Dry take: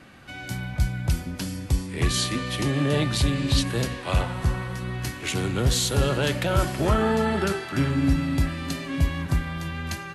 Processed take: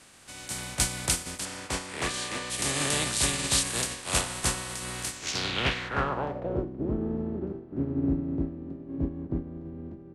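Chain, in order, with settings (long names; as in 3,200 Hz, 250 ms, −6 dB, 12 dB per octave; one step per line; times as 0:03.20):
compressing power law on the bin magnitudes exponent 0.42
0:01.45–0:02.50: mid-hump overdrive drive 13 dB, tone 1,200 Hz, clips at −8 dBFS
low-pass filter sweep 8,900 Hz → 320 Hz, 0:05.10–0:06.71
level −6.5 dB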